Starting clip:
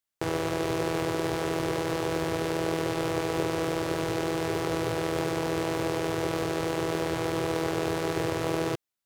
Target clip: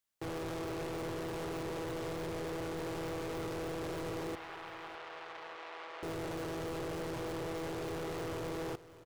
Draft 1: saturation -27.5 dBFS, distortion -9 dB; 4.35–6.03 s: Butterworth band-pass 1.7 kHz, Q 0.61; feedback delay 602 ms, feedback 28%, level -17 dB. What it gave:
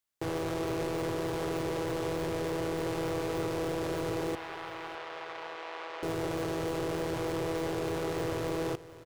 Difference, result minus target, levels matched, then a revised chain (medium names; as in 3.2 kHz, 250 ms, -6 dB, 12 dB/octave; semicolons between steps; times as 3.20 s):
saturation: distortion -5 dB
saturation -37 dBFS, distortion -4 dB; 4.35–6.03 s: Butterworth band-pass 1.7 kHz, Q 0.61; feedback delay 602 ms, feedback 28%, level -17 dB